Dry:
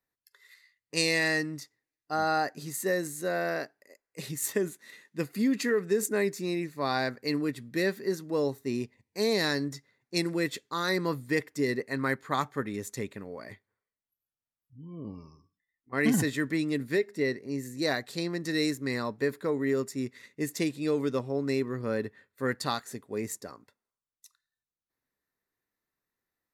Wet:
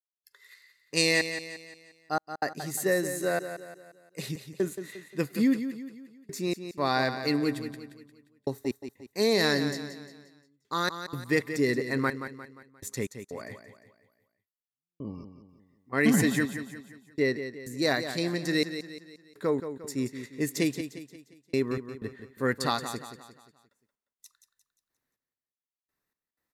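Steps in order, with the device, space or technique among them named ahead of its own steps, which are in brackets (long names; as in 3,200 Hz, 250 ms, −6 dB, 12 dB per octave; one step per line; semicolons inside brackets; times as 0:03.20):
trance gate with a delay (gate pattern ".xxxx...x" 62 BPM −60 dB; repeating echo 176 ms, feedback 44%, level −10 dB)
level +2.5 dB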